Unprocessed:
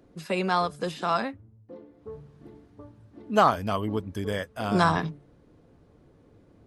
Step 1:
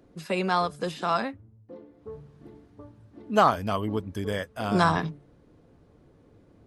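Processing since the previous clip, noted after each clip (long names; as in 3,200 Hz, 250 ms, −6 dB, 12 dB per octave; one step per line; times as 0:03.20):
no processing that can be heard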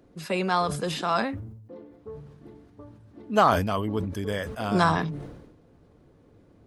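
level that may fall only so fast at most 54 dB per second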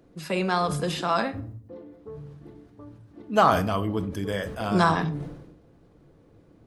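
rectangular room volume 660 cubic metres, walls furnished, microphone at 0.68 metres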